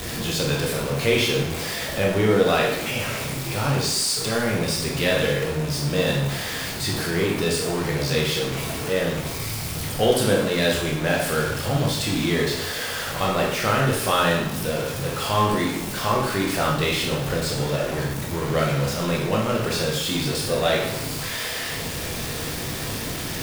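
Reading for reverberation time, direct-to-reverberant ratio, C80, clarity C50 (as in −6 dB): 0.85 s, −2.5 dB, 5.5 dB, 3.0 dB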